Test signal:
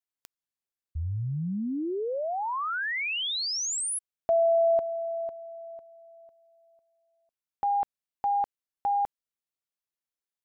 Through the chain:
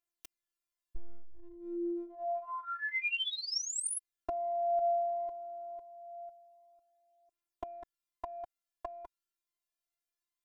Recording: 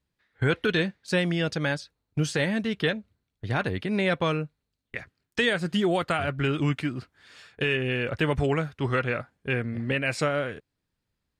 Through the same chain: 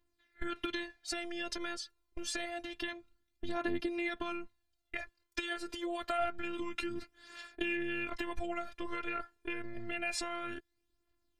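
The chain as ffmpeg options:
ffmpeg -i in.wav -af "acompressor=threshold=-35dB:ratio=6:attack=17:release=80:knee=1:detection=peak,afftfilt=real='hypot(re,im)*cos(PI*b)':imag='0':win_size=512:overlap=0.75,aphaser=in_gain=1:out_gain=1:delay=2.3:decay=0.47:speed=0.27:type=triangular,volume=2dB" out.wav

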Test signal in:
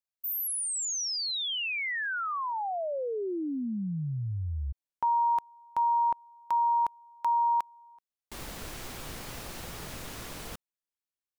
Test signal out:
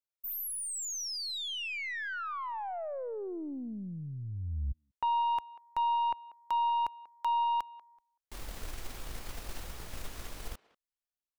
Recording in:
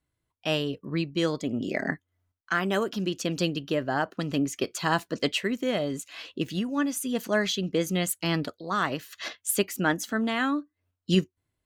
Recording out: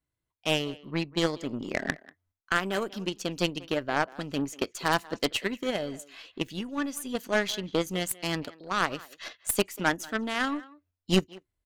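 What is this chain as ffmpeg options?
ffmpeg -i in.wav -filter_complex "[0:a]asubboost=boost=4:cutoff=63,aeval=exprs='0.282*(cos(1*acos(clip(val(0)/0.282,-1,1)))-cos(1*PI/2))+0.0112*(cos(2*acos(clip(val(0)/0.282,-1,1)))-cos(2*PI/2))+0.0562*(cos(6*acos(clip(val(0)/0.282,-1,1)))-cos(6*PI/2))+0.02*(cos(7*acos(clip(val(0)/0.282,-1,1)))-cos(7*PI/2))+0.0398*(cos(8*acos(clip(val(0)/0.282,-1,1)))-cos(8*PI/2))':channel_layout=same,asplit=2[link_01][link_02];[link_02]adelay=190,highpass=300,lowpass=3400,asoftclip=type=hard:threshold=-18dB,volume=-19dB[link_03];[link_01][link_03]amix=inputs=2:normalize=0" out.wav

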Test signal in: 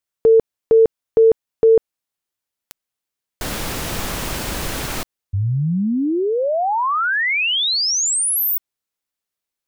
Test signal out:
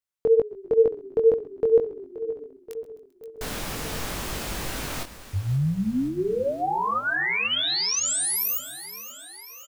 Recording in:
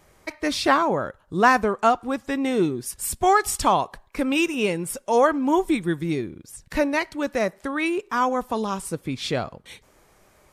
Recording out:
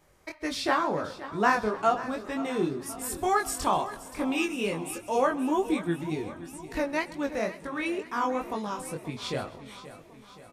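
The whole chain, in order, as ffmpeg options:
ffmpeg -i in.wav -filter_complex "[0:a]asplit=2[link_01][link_02];[link_02]aecho=0:1:527|1054|1581|2108|2635|3162:0.178|0.107|0.064|0.0384|0.023|0.0138[link_03];[link_01][link_03]amix=inputs=2:normalize=0,flanger=delay=19:depth=4.7:speed=2.1,asplit=2[link_04][link_05];[link_05]asplit=6[link_06][link_07][link_08][link_09][link_10][link_11];[link_06]adelay=131,afreqshift=-31,volume=-20.5dB[link_12];[link_07]adelay=262,afreqshift=-62,volume=-24.4dB[link_13];[link_08]adelay=393,afreqshift=-93,volume=-28.3dB[link_14];[link_09]adelay=524,afreqshift=-124,volume=-32.1dB[link_15];[link_10]adelay=655,afreqshift=-155,volume=-36dB[link_16];[link_11]adelay=786,afreqshift=-186,volume=-39.9dB[link_17];[link_12][link_13][link_14][link_15][link_16][link_17]amix=inputs=6:normalize=0[link_18];[link_04][link_18]amix=inputs=2:normalize=0,volume=-3.5dB" out.wav

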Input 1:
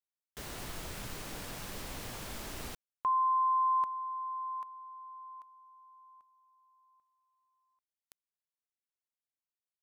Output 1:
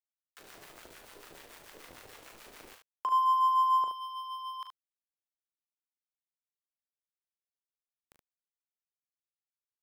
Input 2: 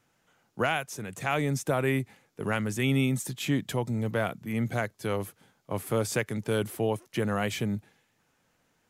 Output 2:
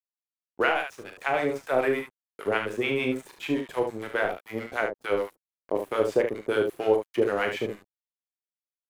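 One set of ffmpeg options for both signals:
ffmpeg -i in.wav -filter_complex "[0:a]lowshelf=frequency=260:width_type=q:width=1.5:gain=-13,aeval=exprs='sgn(val(0))*max(abs(val(0))-0.00891,0)':channel_layout=same,acompressor=mode=upward:threshold=-39dB:ratio=1.5:attack=1.1:release=454:knee=2.83:detection=peak,acrossover=split=820[link_01][link_02];[link_01]aeval=exprs='val(0)*(1-1/2+1/2*cos(2*PI*6.8*n/s))':channel_layout=same[link_03];[link_02]aeval=exprs='val(0)*(1-1/2-1/2*cos(2*PI*6.8*n/s))':channel_layout=same[link_04];[link_03][link_04]amix=inputs=2:normalize=0,acrossover=split=3100[link_05][link_06];[link_06]acompressor=threshold=-58dB:ratio=4:attack=1:release=60[link_07];[link_05][link_07]amix=inputs=2:normalize=0,asplit=2[link_08][link_09];[link_09]aecho=0:1:27|39|73:0.237|0.422|0.447[link_10];[link_08][link_10]amix=inputs=2:normalize=0,volume=8dB" out.wav

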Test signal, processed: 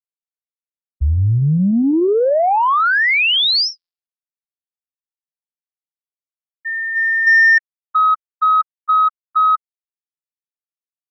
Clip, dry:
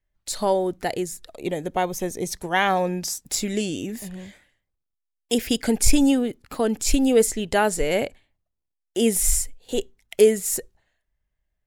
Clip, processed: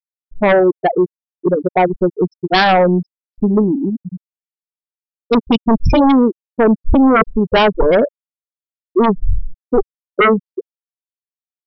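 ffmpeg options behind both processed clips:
ffmpeg -i in.wav -af "afftfilt=real='re*gte(hypot(re,im),0.224)':imag='im*gte(hypot(re,im),0.224)':win_size=1024:overlap=0.75,aresample=11025,aeval=exprs='0.501*sin(PI/2*3.98*val(0)/0.501)':channel_layout=same,aresample=44100,volume=-1dB" out.wav

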